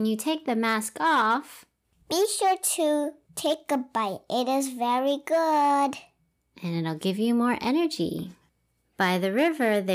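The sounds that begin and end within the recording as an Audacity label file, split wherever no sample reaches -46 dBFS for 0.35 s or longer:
2.100000	6.050000	sound
6.570000	8.340000	sound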